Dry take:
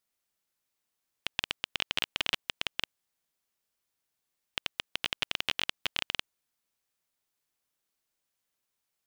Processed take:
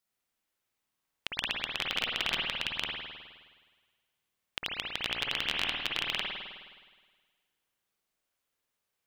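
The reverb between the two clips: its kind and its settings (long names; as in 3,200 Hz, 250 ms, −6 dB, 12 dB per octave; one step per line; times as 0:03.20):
spring reverb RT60 1.5 s, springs 52 ms, chirp 55 ms, DRR −2.5 dB
level −2 dB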